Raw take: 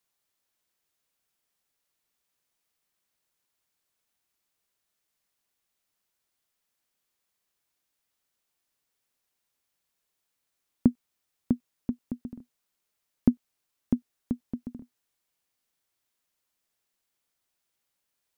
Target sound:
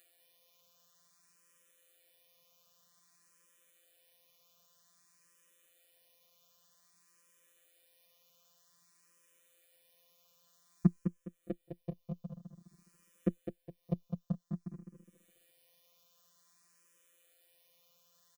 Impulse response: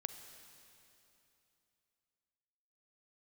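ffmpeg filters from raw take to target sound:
-filter_complex "[0:a]highpass=frequency=70:width=0.5412,highpass=frequency=70:width=1.3066,aecho=1:1:1.7:0.72,afftfilt=real='hypot(re,im)*cos(PI*b)':imag='0':win_size=1024:overlap=0.75,acompressor=mode=upward:threshold=-50dB:ratio=2.5,equalizer=frequency=260:width_type=o:width=1.4:gain=5.5,aecho=1:1:207|414|621|828:0.447|0.147|0.0486|0.0161,asplit=2[link_01][link_02];[link_02]afreqshift=0.52[link_03];[link_01][link_03]amix=inputs=2:normalize=1,volume=1.5dB"

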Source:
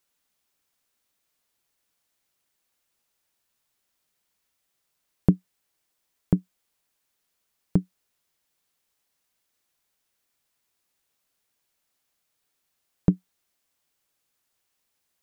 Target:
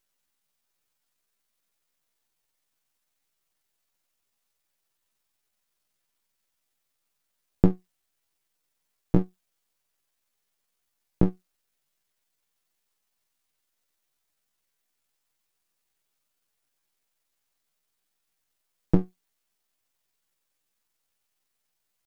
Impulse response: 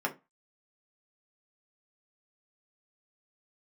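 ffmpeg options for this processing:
-af "aeval=exprs='max(val(0),0)':channel_layout=same,atempo=0.69,volume=2dB"

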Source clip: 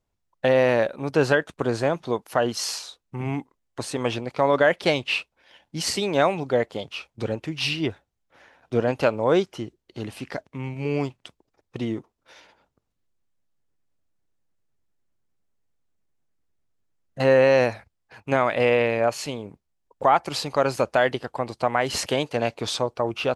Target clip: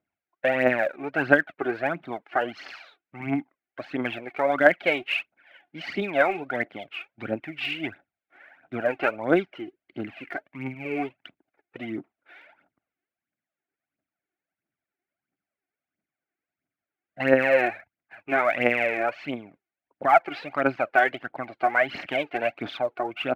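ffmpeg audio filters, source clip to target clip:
ffmpeg -i in.wav -af "highpass=230,equalizer=frequency=290:width_type=q:width=4:gain=5,equalizer=frequency=470:width_type=q:width=4:gain=-9,equalizer=frequency=690:width_type=q:width=4:gain=6,equalizer=frequency=1000:width_type=q:width=4:gain=-8,equalizer=frequency=1500:width_type=q:width=4:gain=7,equalizer=frequency=2200:width_type=q:width=4:gain=7,lowpass=frequency=2800:width=0.5412,lowpass=frequency=2800:width=1.3066,aphaser=in_gain=1:out_gain=1:delay=2.9:decay=0.64:speed=1.5:type=triangular,volume=-4dB" out.wav

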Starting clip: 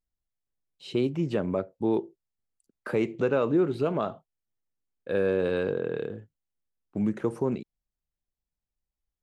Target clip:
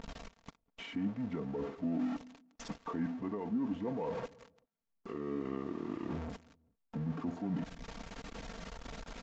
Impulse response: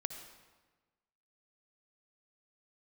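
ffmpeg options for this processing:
-filter_complex "[0:a]aeval=exprs='val(0)+0.5*0.0251*sgn(val(0))':channel_layout=same,areverse,acompressor=threshold=-34dB:ratio=12,areverse,highpass=frequency=260:poles=1,aecho=1:1:3.3:0.56,asplit=2[link_01][link_02];[link_02]adelay=194,lowpass=frequency=840:poles=1,volume=-23dB,asplit=2[link_03][link_04];[link_04]adelay=194,lowpass=frequency=840:poles=1,volume=0.3[link_05];[link_01][link_03][link_05]amix=inputs=3:normalize=0,aphaser=in_gain=1:out_gain=1:delay=4:decay=0.21:speed=1.8:type=sinusoidal,alimiter=level_in=7.5dB:limit=-24dB:level=0:latency=1:release=272,volume=-7.5dB,lowpass=frequency=3700:poles=1,highshelf=frequency=2100:gain=-8.5,asetrate=33038,aresample=44100,atempo=1.33484,equalizer=frequency=390:width=6.5:gain=-7.5,volume=5.5dB" -ar 16000 -c:a libvorbis -b:a 96k

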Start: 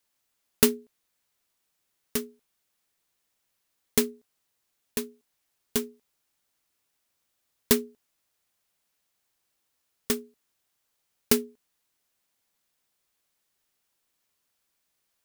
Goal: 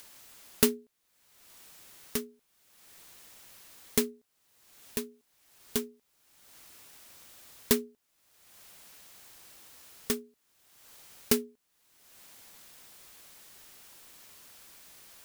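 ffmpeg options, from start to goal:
ffmpeg -i in.wav -af "acompressor=mode=upward:threshold=-28dB:ratio=2.5,volume=-3.5dB" out.wav

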